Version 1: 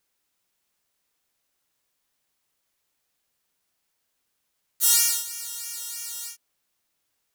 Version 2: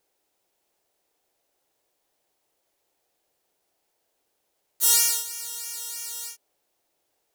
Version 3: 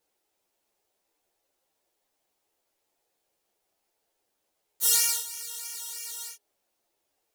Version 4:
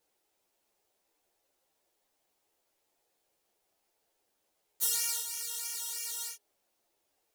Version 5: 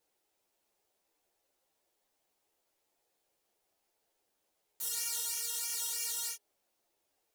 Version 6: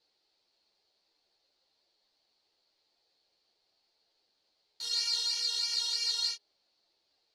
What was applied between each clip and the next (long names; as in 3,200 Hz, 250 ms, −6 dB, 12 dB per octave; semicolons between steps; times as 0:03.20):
flat-topped bell 520 Hz +10.5 dB
string-ensemble chorus
downward compressor 6 to 1, threshold −26 dBFS, peak gain reduction 9.5 dB
brickwall limiter −25 dBFS, peak gain reduction 11.5 dB; leveller curve on the samples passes 1
low-pass with resonance 4,400 Hz, resonance Q 8